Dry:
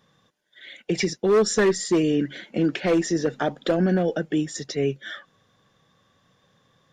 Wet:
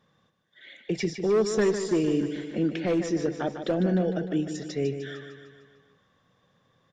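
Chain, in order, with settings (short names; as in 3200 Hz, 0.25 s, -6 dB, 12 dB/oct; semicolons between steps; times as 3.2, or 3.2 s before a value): high shelf 4500 Hz -8.5 dB; on a send: feedback echo 0.151 s, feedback 56%, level -9 dB; on the sum: dynamic EQ 1300 Hz, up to -4 dB, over -37 dBFS, Q 0.76; gain -3.5 dB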